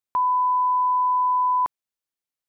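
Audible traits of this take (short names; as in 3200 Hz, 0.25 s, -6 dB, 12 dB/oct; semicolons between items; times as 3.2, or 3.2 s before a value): noise floor -90 dBFS; spectral tilt -2.5 dB/oct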